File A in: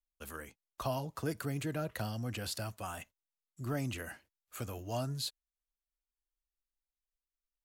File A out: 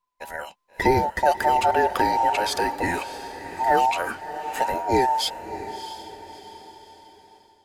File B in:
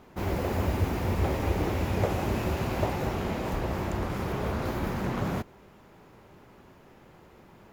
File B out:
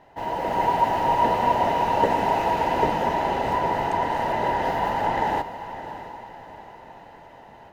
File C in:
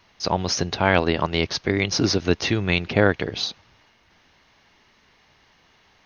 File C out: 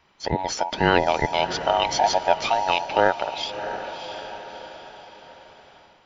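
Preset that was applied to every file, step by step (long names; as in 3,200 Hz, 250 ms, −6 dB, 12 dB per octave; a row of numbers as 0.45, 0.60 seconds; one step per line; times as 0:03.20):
frequency inversion band by band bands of 1,000 Hz
low-pass filter 3,300 Hz 6 dB per octave
on a send: feedback delay with all-pass diffusion 647 ms, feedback 43%, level −12 dB
on the sum: automatic gain control gain up to 6 dB
loudness normalisation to −23 LKFS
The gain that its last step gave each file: +10.5, 0.0, −2.0 decibels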